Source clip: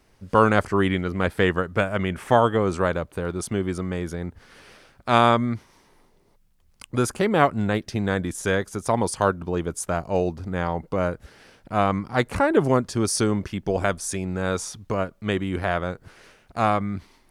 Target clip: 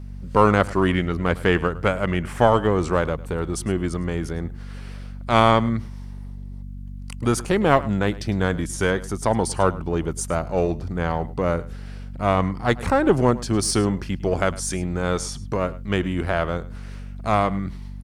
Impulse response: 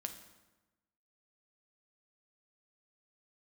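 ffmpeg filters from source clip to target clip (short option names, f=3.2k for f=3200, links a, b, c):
-filter_complex "[0:a]asplit=2[a][b];[b]aeval=exprs='clip(val(0),-1,0.0596)':c=same,volume=-7.5dB[c];[a][c]amix=inputs=2:normalize=0,aeval=exprs='val(0)+0.0224*(sin(2*PI*50*n/s)+sin(2*PI*2*50*n/s)/2+sin(2*PI*3*50*n/s)/3+sin(2*PI*4*50*n/s)/4+sin(2*PI*5*50*n/s)/5)':c=same,asetrate=42336,aresample=44100,aecho=1:1:105:0.112,volume=-1dB"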